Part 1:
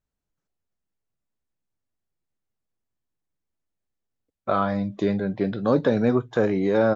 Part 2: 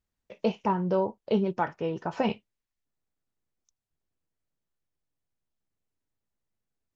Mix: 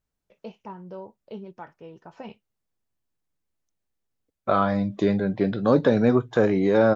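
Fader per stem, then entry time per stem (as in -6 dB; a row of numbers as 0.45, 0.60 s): +1.5, -13.0 dB; 0.00, 0.00 s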